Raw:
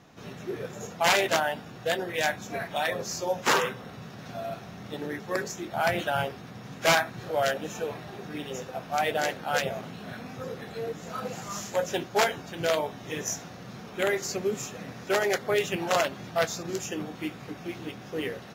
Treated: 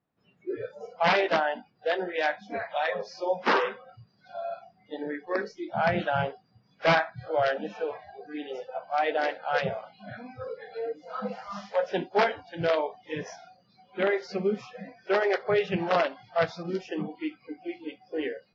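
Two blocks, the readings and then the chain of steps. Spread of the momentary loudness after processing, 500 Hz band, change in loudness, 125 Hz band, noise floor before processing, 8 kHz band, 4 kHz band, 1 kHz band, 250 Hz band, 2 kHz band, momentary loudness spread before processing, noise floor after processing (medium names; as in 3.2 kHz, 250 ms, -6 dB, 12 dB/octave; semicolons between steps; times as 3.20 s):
15 LU, +1.0 dB, 0.0 dB, -1.0 dB, -44 dBFS, under -20 dB, -5.0 dB, +1.0 dB, +0.5 dB, -1.0 dB, 14 LU, -66 dBFS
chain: dynamic bell 190 Hz, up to +6 dB, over -53 dBFS, Q 4.2; elliptic low-pass 5.1 kHz, stop band 60 dB; treble shelf 2.9 kHz -11.5 dB; spectral noise reduction 28 dB; trim +2.5 dB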